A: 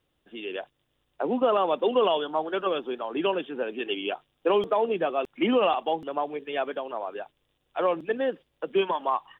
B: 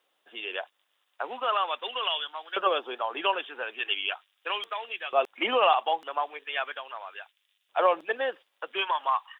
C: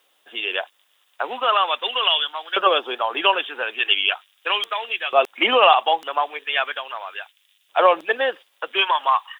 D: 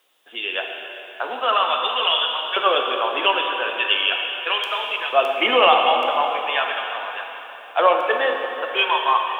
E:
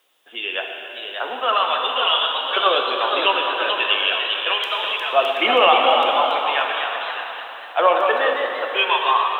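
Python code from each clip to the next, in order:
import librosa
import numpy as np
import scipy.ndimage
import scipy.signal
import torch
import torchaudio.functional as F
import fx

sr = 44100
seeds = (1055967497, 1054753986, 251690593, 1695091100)

y1 = fx.filter_lfo_highpass(x, sr, shape='saw_up', hz=0.39, low_hz=640.0, high_hz=2300.0, q=1.0)
y1 = y1 * 10.0 ** (4.0 / 20.0)
y2 = fx.high_shelf(y1, sr, hz=3200.0, db=8.0)
y2 = y2 * 10.0 ** (7.0 / 20.0)
y3 = fx.rev_plate(y2, sr, seeds[0], rt60_s=3.6, hf_ratio=0.85, predelay_ms=0, drr_db=1.5)
y3 = y3 * 10.0 ** (-1.5 / 20.0)
y4 = fx.echo_pitch(y3, sr, ms=618, semitones=1, count=2, db_per_echo=-6.0)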